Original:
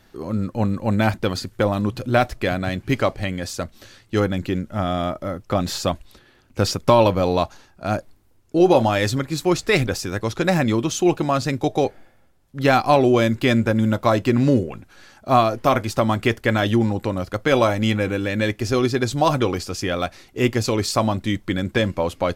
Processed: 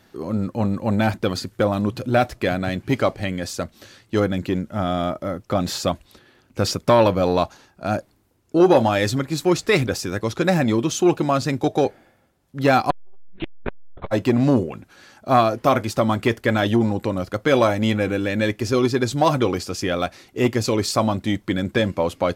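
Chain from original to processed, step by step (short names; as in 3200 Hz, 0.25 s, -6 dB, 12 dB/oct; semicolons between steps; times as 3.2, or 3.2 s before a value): HPF 140 Hz 6 dB/oct; low shelf 470 Hz +3.5 dB; 12.9–14.1 monotone LPC vocoder at 8 kHz 190 Hz; core saturation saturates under 520 Hz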